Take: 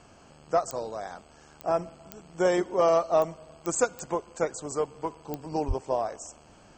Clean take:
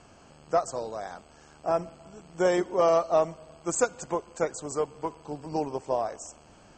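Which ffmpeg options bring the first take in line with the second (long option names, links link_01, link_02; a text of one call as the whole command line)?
ffmpeg -i in.wav -filter_complex "[0:a]adeclick=threshold=4,asplit=3[link_01][link_02][link_03];[link_01]afade=type=out:start_time=5.67:duration=0.02[link_04];[link_02]highpass=frequency=140:width=0.5412,highpass=frequency=140:width=1.3066,afade=type=in:start_time=5.67:duration=0.02,afade=type=out:start_time=5.79:duration=0.02[link_05];[link_03]afade=type=in:start_time=5.79:duration=0.02[link_06];[link_04][link_05][link_06]amix=inputs=3:normalize=0" out.wav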